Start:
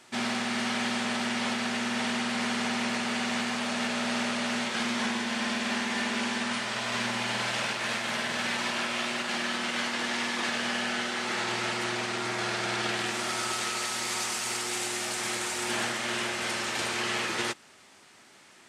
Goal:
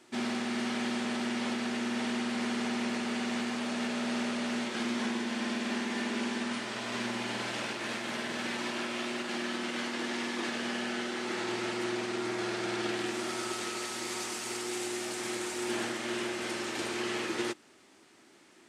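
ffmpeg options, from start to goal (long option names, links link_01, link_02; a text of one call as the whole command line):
ffmpeg -i in.wav -af "equalizer=frequency=320:width_type=o:width=0.91:gain=11.5,volume=-6.5dB" out.wav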